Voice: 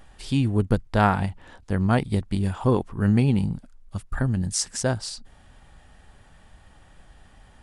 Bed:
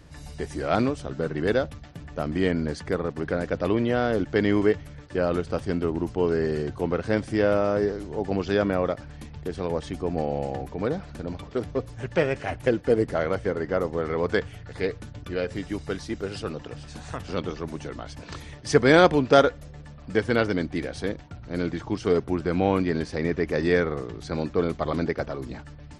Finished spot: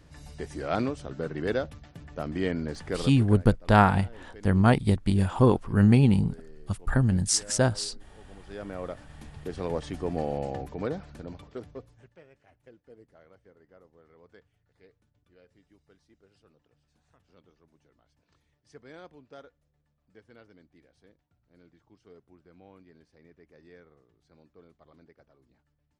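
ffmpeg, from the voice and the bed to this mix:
ffmpeg -i stem1.wav -i stem2.wav -filter_complex "[0:a]adelay=2750,volume=1dB[link_01];[1:a]volume=17.5dB,afade=type=out:start_time=2.99:duration=0.47:silence=0.0944061,afade=type=in:start_time=8.41:duration=1.3:silence=0.0749894,afade=type=out:start_time=10.58:duration=1.57:silence=0.0375837[link_02];[link_01][link_02]amix=inputs=2:normalize=0" out.wav

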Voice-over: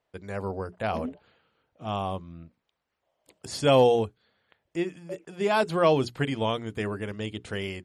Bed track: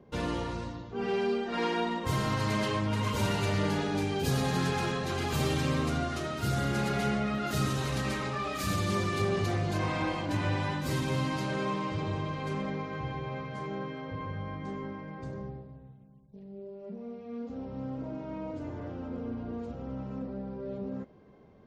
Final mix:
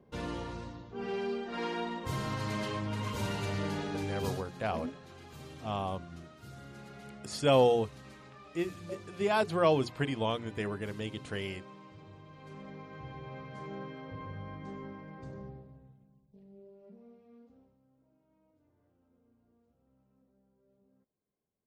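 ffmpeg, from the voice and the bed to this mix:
ffmpeg -i stem1.wav -i stem2.wav -filter_complex "[0:a]adelay=3800,volume=-4.5dB[link_01];[1:a]volume=8.5dB,afade=type=out:start_time=4.22:duration=0.22:silence=0.199526,afade=type=in:start_time=12.24:duration=1.49:silence=0.199526,afade=type=out:start_time=15.67:duration=2.11:silence=0.0398107[link_02];[link_01][link_02]amix=inputs=2:normalize=0" out.wav

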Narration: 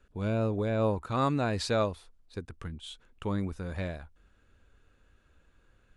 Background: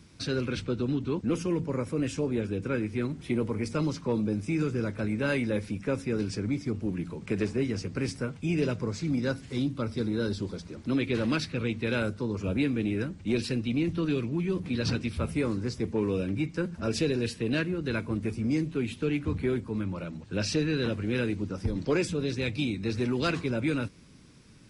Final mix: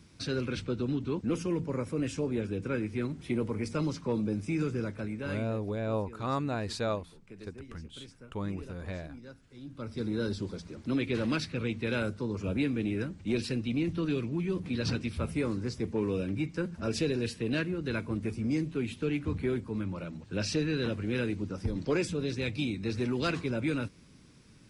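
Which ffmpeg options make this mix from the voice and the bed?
ffmpeg -i stem1.wav -i stem2.wav -filter_complex "[0:a]adelay=5100,volume=-4dB[link_01];[1:a]volume=14.5dB,afade=type=out:start_time=4.72:duration=0.87:silence=0.141254,afade=type=in:start_time=9.61:duration=0.51:silence=0.141254[link_02];[link_01][link_02]amix=inputs=2:normalize=0" out.wav

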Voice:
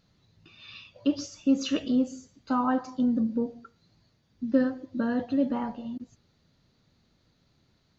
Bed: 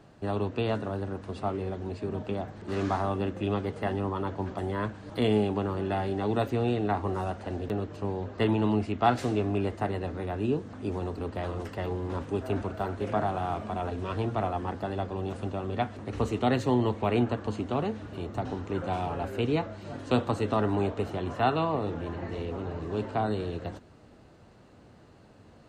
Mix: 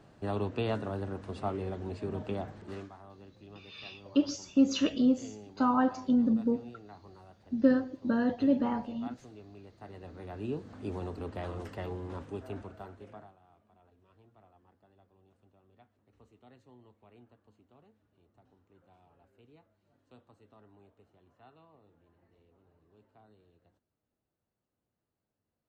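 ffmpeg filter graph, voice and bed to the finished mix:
ffmpeg -i stem1.wav -i stem2.wav -filter_complex "[0:a]adelay=3100,volume=-0.5dB[link_01];[1:a]volume=15dB,afade=type=out:start_time=2.5:duration=0.39:silence=0.1,afade=type=in:start_time=9.74:duration=1.12:silence=0.125893,afade=type=out:start_time=11.69:duration=1.67:silence=0.0398107[link_02];[link_01][link_02]amix=inputs=2:normalize=0" out.wav

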